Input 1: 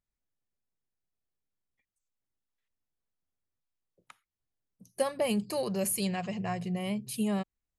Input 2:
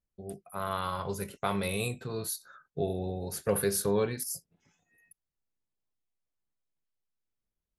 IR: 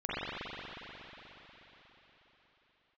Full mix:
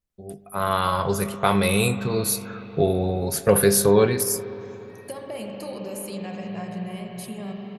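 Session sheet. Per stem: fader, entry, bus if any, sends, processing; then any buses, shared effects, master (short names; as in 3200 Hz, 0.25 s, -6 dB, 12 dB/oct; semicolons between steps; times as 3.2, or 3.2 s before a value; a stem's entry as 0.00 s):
-0.5 dB, 0.10 s, send -7 dB, compressor 2.5:1, threshold -39 dBFS, peak gain reduction 11 dB
+1.5 dB, 0.00 s, send -22 dB, AGC gain up to 9 dB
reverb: on, RT60 4.4 s, pre-delay 40 ms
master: dry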